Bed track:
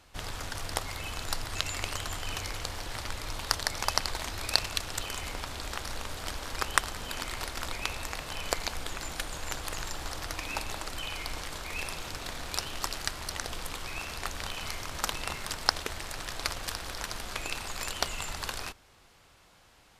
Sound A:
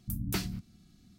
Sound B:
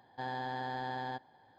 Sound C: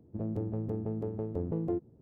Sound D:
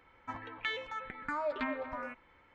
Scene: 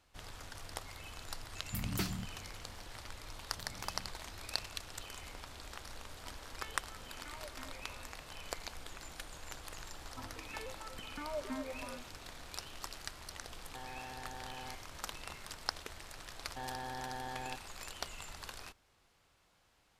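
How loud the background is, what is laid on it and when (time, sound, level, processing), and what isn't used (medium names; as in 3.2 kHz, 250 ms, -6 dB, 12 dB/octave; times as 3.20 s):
bed track -11.5 dB
1.65 s: add A -3.5 dB
3.50 s: add A -12.5 dB + compression, threshold -37 dBFS
5.97 s: add D -17.5 dB
9.89 s: add D -11.5 dB + tilt shelf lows +9.5 dB, about 1.4 kHz
13.57 s: add B -1.5 dB + peak limiter -38.5 dBFS
16.38 s: add B -5 dB
not used: C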